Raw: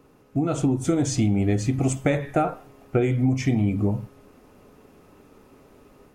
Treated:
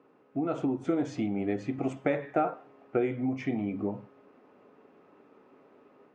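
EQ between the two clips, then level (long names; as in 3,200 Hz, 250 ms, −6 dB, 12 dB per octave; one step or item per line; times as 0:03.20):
band-pass filter 260–2,300 Hz
−4.0 dB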